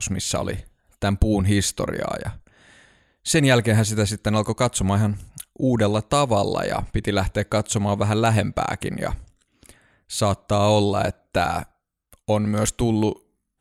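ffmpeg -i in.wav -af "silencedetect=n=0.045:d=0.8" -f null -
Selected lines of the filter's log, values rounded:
silence_start: 2.30
silence_end: 3.26 | silence_duration: 0.96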